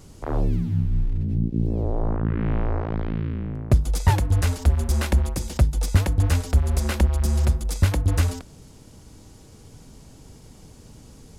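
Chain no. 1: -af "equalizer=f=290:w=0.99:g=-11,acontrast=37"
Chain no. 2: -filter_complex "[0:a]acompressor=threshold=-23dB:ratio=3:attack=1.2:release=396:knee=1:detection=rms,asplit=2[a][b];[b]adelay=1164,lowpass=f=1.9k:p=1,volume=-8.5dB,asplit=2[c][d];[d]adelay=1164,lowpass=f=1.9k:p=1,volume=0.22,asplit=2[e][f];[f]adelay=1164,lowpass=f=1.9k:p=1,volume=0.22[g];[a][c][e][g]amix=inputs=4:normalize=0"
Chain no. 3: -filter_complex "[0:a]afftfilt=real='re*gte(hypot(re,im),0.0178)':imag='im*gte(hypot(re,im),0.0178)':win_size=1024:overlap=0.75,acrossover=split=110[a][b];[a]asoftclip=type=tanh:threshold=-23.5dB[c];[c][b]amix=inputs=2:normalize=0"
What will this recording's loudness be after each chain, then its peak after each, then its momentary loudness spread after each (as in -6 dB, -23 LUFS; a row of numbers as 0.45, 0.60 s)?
-20.0, -30.0, -26.5 LUFS; -3.0, -14.0, -8.5 dBFS; 7, 17, 5 LU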